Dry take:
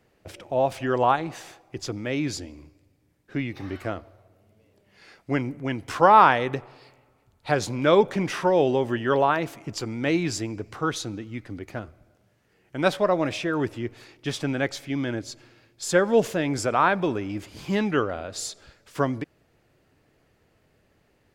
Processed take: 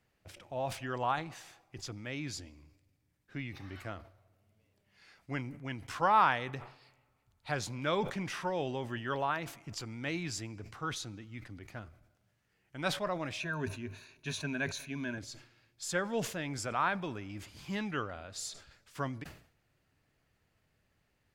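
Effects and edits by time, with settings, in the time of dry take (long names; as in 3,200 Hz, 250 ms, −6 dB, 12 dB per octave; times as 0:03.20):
0:13.40–0:15.18: EQ curve with evenly spaced ripples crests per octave 1.5, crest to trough 13 dB
whole clip: parametric band 410 Hz −8.5 dB 1.8 octaves; level that may fall only so fast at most 110 dB per second; level −8 dB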